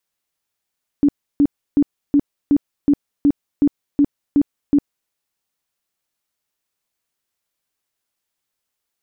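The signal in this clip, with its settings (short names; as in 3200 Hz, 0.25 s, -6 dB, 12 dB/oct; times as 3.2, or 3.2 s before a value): tone bursts 287 Hz, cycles 16, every 0.37 s, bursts 11, -9.5 dBFS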